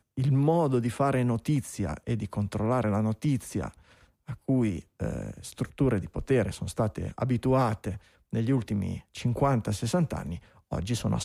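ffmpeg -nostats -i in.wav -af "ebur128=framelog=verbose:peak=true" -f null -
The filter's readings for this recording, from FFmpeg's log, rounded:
Integrated loudness:
  I:         -28.8 LUFS
  Threshold: -39.1 LUFS
Loudness range:
  LRA:         3.2 LU
  Threshold: -49.5 LUFS
  LRA low:   -30.9 LUFS
  LRA high:  -27.6 LUFS
True peak:
  Peak:      -12.8 dBFS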